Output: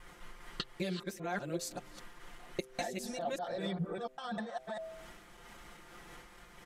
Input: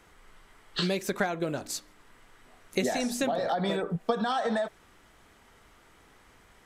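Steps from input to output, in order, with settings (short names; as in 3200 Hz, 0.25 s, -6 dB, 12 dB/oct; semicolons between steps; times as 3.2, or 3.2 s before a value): local time reversal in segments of 0.199 s; de-hum 129.4 Hz, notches 6; compressor 16:1, threshold -39 dBFS, peak gain reduction 19 dB; comb 5.7 ms; noise-modulated level, depth 60%; gain +6 dB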